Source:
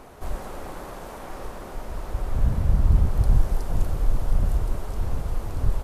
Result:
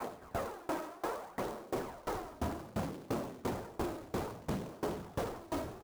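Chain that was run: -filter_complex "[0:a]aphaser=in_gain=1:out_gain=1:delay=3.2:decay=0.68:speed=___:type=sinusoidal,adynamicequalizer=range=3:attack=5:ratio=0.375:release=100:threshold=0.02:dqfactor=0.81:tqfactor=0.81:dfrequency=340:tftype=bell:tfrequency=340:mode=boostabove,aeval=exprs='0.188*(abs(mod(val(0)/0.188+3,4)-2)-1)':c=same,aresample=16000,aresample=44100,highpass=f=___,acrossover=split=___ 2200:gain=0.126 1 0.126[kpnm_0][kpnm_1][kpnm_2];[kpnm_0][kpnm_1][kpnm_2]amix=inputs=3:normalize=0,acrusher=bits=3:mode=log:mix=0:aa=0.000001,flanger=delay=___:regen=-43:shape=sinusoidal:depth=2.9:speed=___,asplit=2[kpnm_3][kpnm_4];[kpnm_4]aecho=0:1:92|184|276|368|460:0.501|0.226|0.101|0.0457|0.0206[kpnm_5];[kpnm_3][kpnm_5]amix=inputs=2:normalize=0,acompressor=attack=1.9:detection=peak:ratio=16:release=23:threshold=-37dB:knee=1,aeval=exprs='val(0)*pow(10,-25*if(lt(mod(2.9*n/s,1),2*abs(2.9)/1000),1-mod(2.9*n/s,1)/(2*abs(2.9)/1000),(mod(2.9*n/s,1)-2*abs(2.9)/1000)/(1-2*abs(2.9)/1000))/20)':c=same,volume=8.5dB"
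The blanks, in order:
0.63, 53, 180, 8.5, 1.9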